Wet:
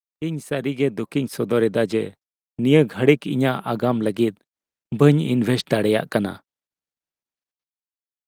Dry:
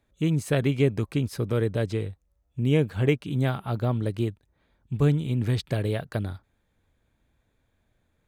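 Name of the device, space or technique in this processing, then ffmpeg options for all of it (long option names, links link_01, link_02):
video call: -af "highpass=frequency=170:width=0.5412,highpass=frequency=170:width=1.3066,dynaudnorm=framelen=320:gausssize=7:maxgain=15dB,agate=range=-38dB:threshold=-35dB:ratio=16:detection=peak" -ar 48000 -c:a libopus -b:a 32k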